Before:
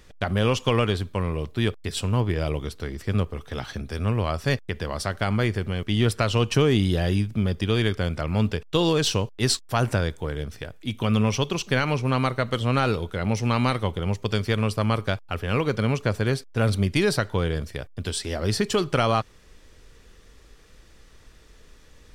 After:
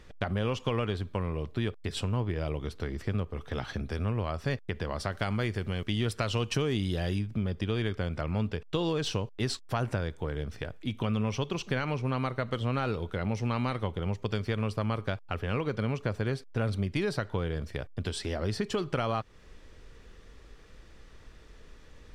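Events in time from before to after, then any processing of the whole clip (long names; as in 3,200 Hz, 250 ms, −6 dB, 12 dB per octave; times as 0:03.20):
0:05.12–0:07.19: high-shelf EQ 3,500 Hz +9 dB
whole clip: low-pass filter 3,200 Hz 6 dB per octave; downward compressor 2.5 to 1, threshold −30 dBFS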